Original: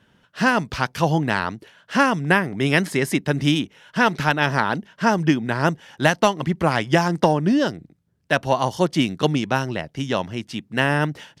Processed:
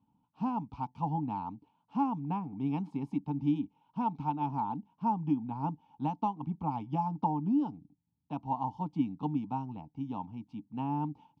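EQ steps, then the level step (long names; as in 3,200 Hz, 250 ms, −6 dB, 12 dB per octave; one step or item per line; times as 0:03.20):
formant filter u
spectral tilt −3.5 dB per octave
phaser with its sweep stopped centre 840 Hz, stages 4
0.0 dB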